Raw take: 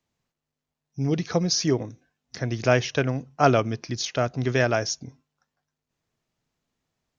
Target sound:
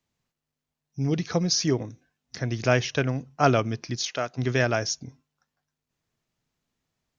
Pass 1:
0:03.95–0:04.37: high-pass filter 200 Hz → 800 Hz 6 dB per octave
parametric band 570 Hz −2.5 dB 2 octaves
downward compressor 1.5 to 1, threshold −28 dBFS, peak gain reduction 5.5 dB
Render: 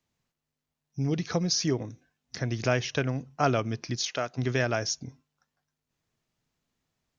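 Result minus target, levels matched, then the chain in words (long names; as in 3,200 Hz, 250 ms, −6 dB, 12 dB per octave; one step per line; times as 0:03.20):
downward compressor: peak gain reduction +5.5 dB
0:03.95–0:04.37: high-pass filter 200 Hz → 800 Hz 6 dB per octave
parametric band 570 Hz −2.5 dB 2 octaves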